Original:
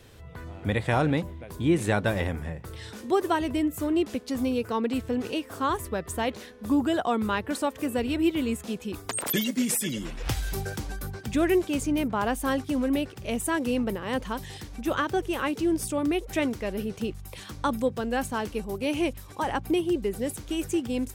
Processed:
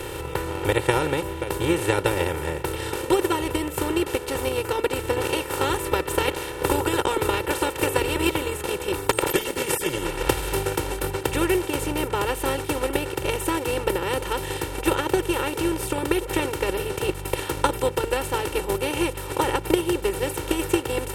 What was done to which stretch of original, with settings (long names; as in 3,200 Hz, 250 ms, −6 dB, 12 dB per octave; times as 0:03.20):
0:05.16–0:08.36: ceiling on every frequency bin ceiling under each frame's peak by 14 dB
whole clip: compressor on every frequency bin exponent 0.4; comb filter 2.2 ms, depth 89%; transient designer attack +9 dB, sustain −4 dB; level −8 dB